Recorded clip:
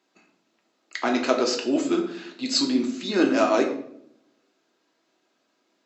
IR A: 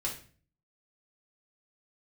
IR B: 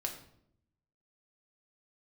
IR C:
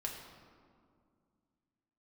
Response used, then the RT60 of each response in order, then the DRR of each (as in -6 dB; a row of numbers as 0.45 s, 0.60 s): B; 0.40 s, 0.70 s, 2.2 s; -3.5 dB, 1.5 dB, -1.0 dB